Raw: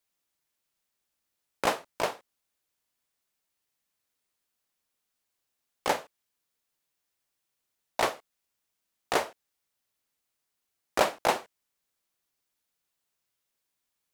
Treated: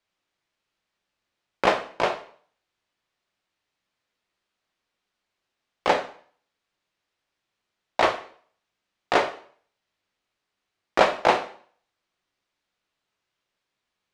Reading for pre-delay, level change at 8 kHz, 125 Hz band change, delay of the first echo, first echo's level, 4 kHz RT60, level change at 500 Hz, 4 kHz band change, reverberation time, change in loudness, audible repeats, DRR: 4 ms, -4.5 dB, +5.5 dB, no echo, no echo, 0.45 s, +7.0 dB, +4.5 dB, 0.50 s, +6.0 dB, no echo, 6.0 dB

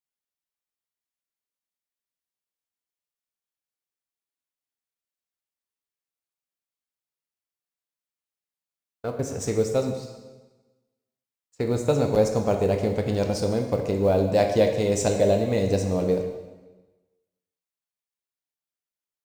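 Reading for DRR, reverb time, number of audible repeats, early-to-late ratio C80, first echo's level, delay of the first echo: 3.5 dB, 1.2 s, no echo, 8.0 dB, no echo, no echo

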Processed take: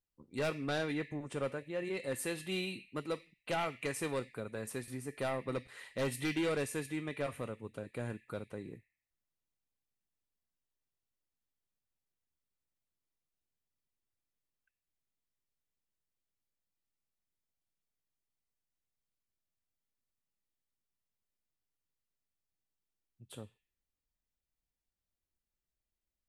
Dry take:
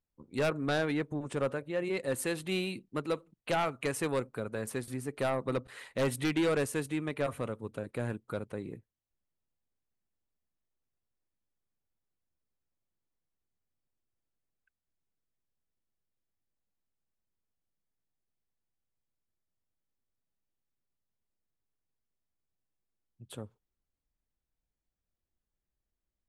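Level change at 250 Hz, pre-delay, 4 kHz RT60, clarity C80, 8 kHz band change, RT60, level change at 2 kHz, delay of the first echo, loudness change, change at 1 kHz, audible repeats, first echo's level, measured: -5.0 dB, 3 ms, 0.45 s, 13.5 dB, -3.0 dB, 0.65 s, -3.5 dB, no echo, -4.5 dB, -5.0 dB, no echo, no echo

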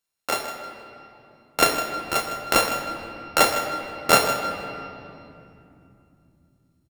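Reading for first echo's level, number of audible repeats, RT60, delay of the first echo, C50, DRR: -12.0 dB, 1, 2.8 s, 157 ms, 5.5 dB, 4.0 dB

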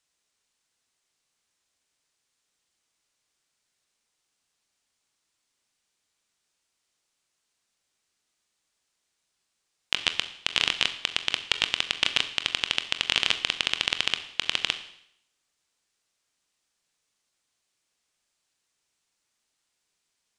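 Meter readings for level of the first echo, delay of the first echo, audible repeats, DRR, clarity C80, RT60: no echo, no echo, no echo, 8.5 dB, 15.0 dB, 0.70 s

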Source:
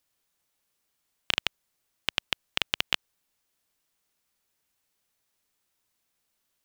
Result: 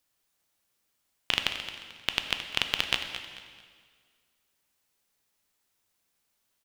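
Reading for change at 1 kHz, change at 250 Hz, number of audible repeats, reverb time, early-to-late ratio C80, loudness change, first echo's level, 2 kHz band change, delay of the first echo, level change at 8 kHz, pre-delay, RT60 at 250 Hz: +1.0 dB, +1.5 dB, 3, 1.8 s, 7.0 dB, 0.0 dB, -12.0 dB, +1.0 dB, 220 ms, +1.0 dB, 6 ms, 1.8 s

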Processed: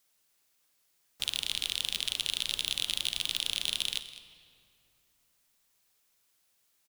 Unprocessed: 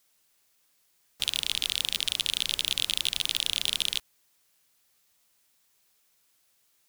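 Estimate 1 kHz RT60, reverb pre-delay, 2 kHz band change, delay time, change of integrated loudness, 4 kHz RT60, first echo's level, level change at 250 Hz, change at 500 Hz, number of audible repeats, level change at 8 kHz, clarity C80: 2.8 s, 34 ms, -3.5 dB, 205 ms, -3.5 dB, 1.7 s, -15.5 dB, -3.5 dB, -3.5 dB, 1, -4.0 dB, 11.5 dB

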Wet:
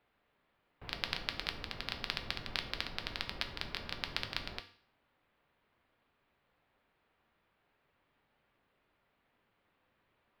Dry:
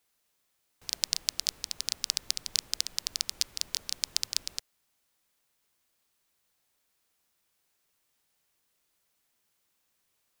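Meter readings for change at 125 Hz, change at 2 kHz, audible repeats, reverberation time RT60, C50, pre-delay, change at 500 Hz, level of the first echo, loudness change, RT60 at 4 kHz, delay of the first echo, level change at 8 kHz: +10.0 dB, +4.5 dB, no echo, 0.50 s, 12.0 dB, 4 ms, +9.0 dB, no echo, -8.0 dB, 0.50 s, no echo, -26.0 dB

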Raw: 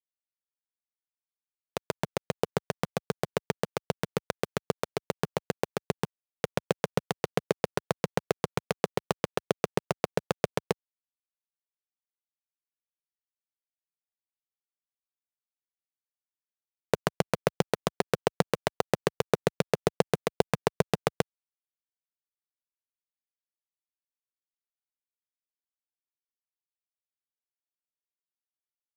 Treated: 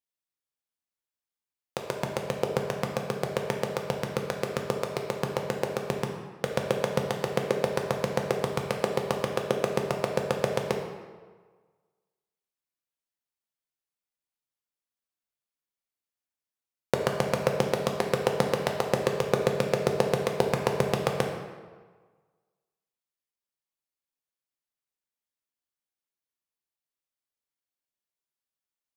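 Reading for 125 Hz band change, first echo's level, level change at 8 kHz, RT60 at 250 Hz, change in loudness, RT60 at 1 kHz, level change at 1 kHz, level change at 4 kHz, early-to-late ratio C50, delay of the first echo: +2.0 dB, no echo, +1.5 dB, 1.4 s, +3.0 dB, 1.5 s, +2.0 dB, +2.0 dB, 4.5 dB, no echo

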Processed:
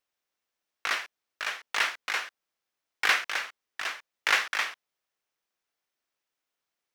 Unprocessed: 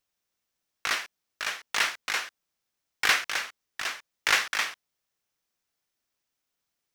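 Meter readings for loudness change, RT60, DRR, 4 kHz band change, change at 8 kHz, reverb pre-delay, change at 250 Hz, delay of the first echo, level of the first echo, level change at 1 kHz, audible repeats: -1.0 dB, no reverb, no reverb, -2.5 dB, -5.5 dB, no reverb, -3.5 dB, no echo, no echo, 0.0 dB, no echo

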